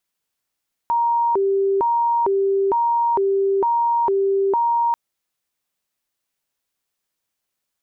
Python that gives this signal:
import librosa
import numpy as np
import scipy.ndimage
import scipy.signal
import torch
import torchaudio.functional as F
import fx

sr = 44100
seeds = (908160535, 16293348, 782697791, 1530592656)

y = fx.siren(sr, length_s=4.04, kind='hi-lo', low_hz=392.0, high_hz=938.0, per_s=1.1, wave='sine', level_db=-15.5)